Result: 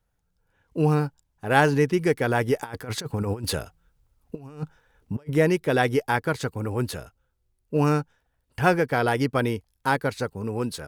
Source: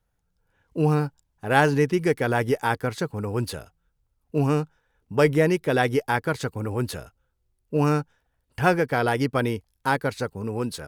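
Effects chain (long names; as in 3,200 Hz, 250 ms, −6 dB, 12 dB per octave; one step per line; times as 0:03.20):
0:02.59–0:05.29: compressor whose output falls as the input rises −30 dBFS, ratio −0.5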